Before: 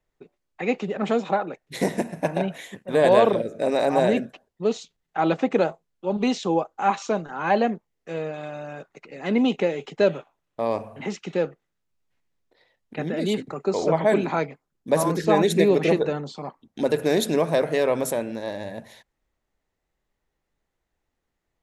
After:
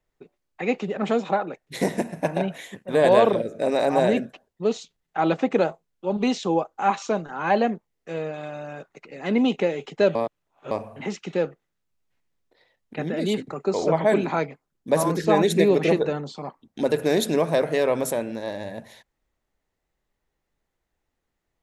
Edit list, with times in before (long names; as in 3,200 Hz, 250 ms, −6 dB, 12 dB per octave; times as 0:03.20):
0:10.15–0:10.71: reverse